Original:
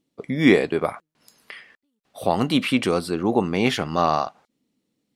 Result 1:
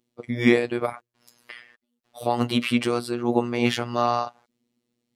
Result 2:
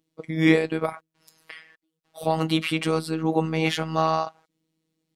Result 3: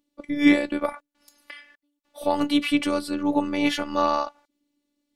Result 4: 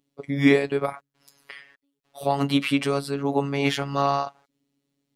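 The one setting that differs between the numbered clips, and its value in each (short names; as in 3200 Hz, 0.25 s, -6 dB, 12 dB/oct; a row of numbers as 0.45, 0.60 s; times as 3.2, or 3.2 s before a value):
robotiser, frequency: 120, 160, 290, 140 Hz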